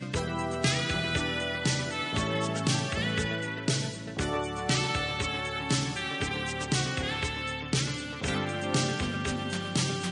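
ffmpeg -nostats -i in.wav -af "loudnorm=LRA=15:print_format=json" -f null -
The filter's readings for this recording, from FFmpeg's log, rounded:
"input_i" : "-29.9",
"input_tp" : "-11.8",
"input_lra" : "1.2",
"input_thresh" : "-39.9",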